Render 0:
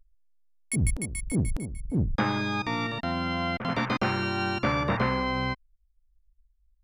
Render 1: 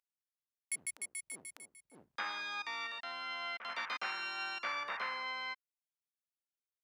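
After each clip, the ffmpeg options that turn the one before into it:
ffmpeg -i in.wav -af "highpass=1200,volume=-6.5dB" out.wav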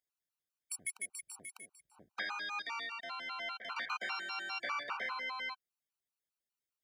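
ffmpeg -i in.wav -af "afftfilt=real='re*gt(sin(2*PI*5*pts/sr)*(1-2*mod(floor(b*sr/1024/770),2)),0)':imag='im*gt(sin(2*PI*5*pts/sr)*(1-2*mod(floor(b*sr/1024/770),2)),0)':win_size=1024:overlap=0.75,volume=3.5dB" out.wav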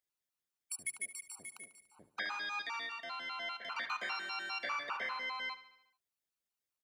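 ffmpeg -i in.wav -af "aecho=1:1:72|144|216|288|360|432:0.178|0.103|0.0598|0.0347|0.0201|0.0117" out.wav

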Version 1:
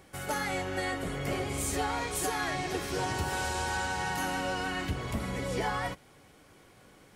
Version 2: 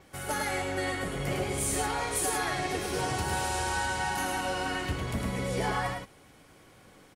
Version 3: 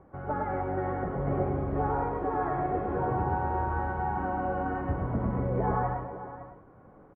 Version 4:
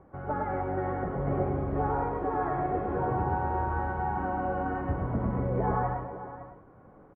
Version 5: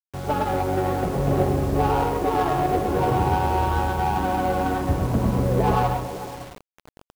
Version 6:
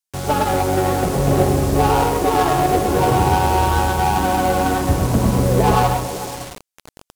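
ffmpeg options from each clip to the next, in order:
ffmpeg -i in.wav -filter_complex "[0:a]asplit=2[link_01][link_02];[link_02]aecho=0:1:106:0.631[link_03];[link_01][link_03]amix=inputs=2:normalize=0,adynamicequalizer=threshold=0.00158:dfrequency=9700:dqfactor=4.2:tfrequency=9700:tqfactor=4.2:attack=5:release=100:ratio=0.375:range=3.5:mode=boostabove:tftype=bell" out.wav
ffmpeg -i in.wav -af "lowpass=frequency=1200:width=0.5412,lowpass=frequency=1200:width=1.3066,aecho=1:1:129|437|556:0.447|0.168|0.211,volume=2dB" out.wav
ffmpeg -i in.wav -af anull out.wav
ffmpeg -i in.wav -af "adynamicsmooth=sensitivity=4:basefreq=550,acrusher=bits=7:mix=0:aa=0.000001,volume=8dB" out.wav
ffmpeg -i in.wav -af "equalizer=frequency=8600:width=0.4:gain=9.5,volume=5dB" out.wav

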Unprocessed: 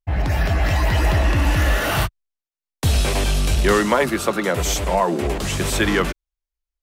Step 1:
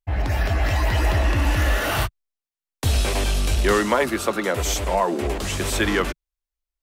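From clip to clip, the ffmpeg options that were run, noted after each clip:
ffmpeg -i in.wav -af "equalizer=frequency=160:width_type=o:width=0.3:gain=-11.5,volume=-2dB" out.wav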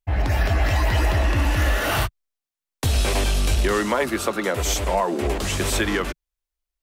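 ffmpeg -i in.wav -af "alimiter=limit=-12.5dB:level=0:latency=1:release=261,volume=1.5dB" out.wav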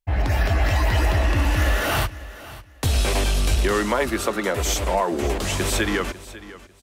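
ffmpeg -i in.wav -af "aecho=1:1:547|1094:0.141|0.0325" out.wav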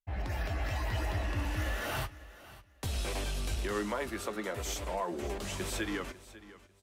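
ffmpeg -i in.wav -af "flanger=delay=5:depth=5.1:regen=71:speed=0.37:shape=sinusoidal,volume=-9dB" out.wav

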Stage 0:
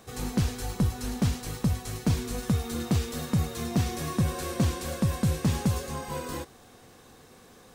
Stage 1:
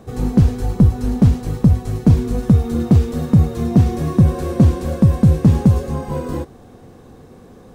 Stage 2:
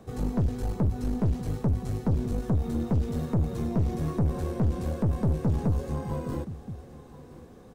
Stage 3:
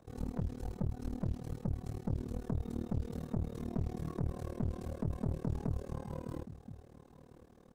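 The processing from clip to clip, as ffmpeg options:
ffmpeg -i in.wav -af "tiltshelf=frequency=970:gain=9,volume=5.5dB" out.wav
ffmpeg -i in.wav -filter_complex "[0:a]acrossover=split=270[link_01][link_02];[link_02]acompressor=threshold=-27dB:ratio=2.5[link_03];[link_01][link_03]amix=inputs=2:normalize=0,aecho=1:1:1022:0.119,aeval=exprs='(tanh(5.62*val(0)+0.4)-tanh(0.4))/5.62':channel_layout=same,volume=-6dB" out.wav
ffmpeg -i in.wav -af "tremolo=f=38:d=0.974,volume=-6.5dB" out.wav

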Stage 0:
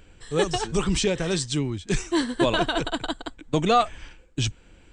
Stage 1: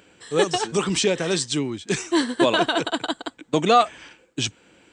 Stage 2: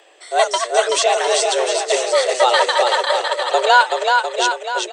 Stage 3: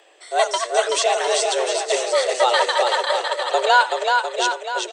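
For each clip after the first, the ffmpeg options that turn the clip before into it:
ffmpeg -i in.wav -af "highpass=210,volume=3.5dB" out.wav
ffmpeg -i in.wav -af "aecho=1:1:380|703|977.6|1211|1409:0.631|0.398|0.251|0.158|0.1,afreqshift=250,volume=4dB" out.wav
ffmpeg -i in.wav -af "aecho=1:1:84:0.1,volume=-3dB" out.wav

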